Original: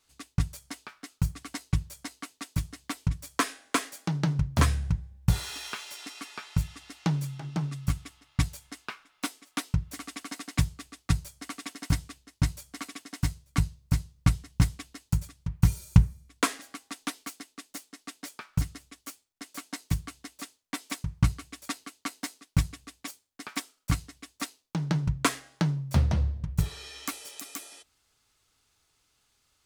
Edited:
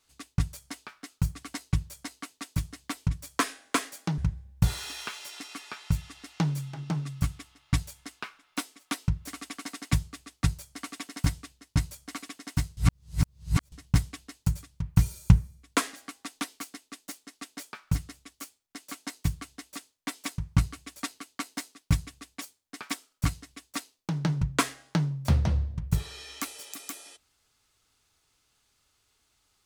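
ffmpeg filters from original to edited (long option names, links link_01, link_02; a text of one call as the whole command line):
ffmpeg -i in.wav -filter_complex "[0:a]asplit=4[link_01][link_02][link_03][link_04];[link_01]atrim=end=4.182[link_05];[link_02]atrim=start=4.838:end=13.432[link_06];[link_03]atrim=start=13.428:end=14.382,asetpts=PTS-STARTPTS,areverse[link_07];[link_04]atrim=start=14.378[link_08];[link_05][link_06]acrossfade=duration=0.004:curve1=hsin:curve2=hsin[link_09];[link_09][link_07]acrossfade=duration=0.004:curve1=hsin:curve2=hsin[link_10];[link_10][link_08]acrossfade=duration=0.004:curve1=hsin:curve2=hsin" out.wav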